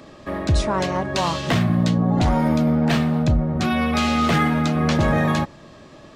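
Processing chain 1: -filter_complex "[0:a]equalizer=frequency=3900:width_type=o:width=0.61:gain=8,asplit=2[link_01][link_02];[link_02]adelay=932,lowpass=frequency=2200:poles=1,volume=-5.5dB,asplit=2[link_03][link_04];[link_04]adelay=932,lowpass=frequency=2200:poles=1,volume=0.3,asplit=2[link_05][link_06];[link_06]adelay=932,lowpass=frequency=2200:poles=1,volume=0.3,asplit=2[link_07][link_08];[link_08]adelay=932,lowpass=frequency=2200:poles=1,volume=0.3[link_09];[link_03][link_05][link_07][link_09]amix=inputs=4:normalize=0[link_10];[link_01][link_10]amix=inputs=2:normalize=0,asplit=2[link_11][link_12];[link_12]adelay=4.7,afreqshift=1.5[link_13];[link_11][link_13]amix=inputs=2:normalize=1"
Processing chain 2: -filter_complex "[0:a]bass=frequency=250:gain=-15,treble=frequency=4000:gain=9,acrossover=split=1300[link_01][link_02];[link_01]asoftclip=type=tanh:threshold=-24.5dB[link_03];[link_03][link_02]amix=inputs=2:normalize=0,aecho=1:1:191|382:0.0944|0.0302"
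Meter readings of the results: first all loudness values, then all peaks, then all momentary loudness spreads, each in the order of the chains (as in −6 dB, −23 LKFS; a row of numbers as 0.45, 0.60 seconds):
−22.0, −25.0 LKFS; −8.5, −5.5 dBFS; 7, 8 LU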